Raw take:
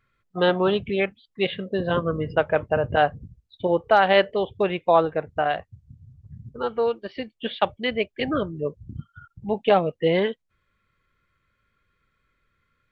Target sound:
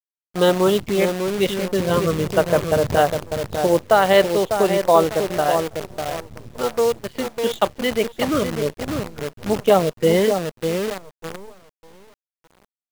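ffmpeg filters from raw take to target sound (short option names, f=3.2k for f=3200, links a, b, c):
-filter_complex "[0:a]equalizer=f=800:t=o:w=0.33:g=-4,equalizer=f=1.6k:t=o:w=0.33:g=-6,equalizer=f=2.5k:t=o:w=0.33:g=-8,asplit=2[a][b];[b]adelay=599,lowpass=f=950:p=1,volume=-5.5dB,asplit=2[c][d];[d]adelay=599,lowpass=f=950:p=1,volume=0.34,asplit=2[e][f];[f]adelay=599,lowpass=f=950:p=1,volume=0.34,asplit=2[g][h];[h]adelay=599,lowpass=f=950:p=1,volume=0.34[i];[a][c][e][g][i]amix=inputs=5:normalize=0,acrusher=bits=6:dc=4:mix=0:aa=0.000001,volume=4.5dB"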